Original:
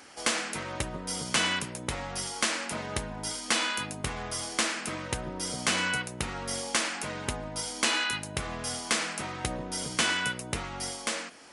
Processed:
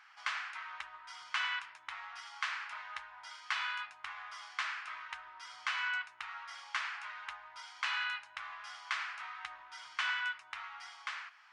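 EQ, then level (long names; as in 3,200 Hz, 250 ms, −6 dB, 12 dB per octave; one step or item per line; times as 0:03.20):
inverse Chebyshev high-pass filter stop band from 540 Hz, stop band 40 dB
head-to-tape spacing loss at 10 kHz 38 dB
+2.0 dB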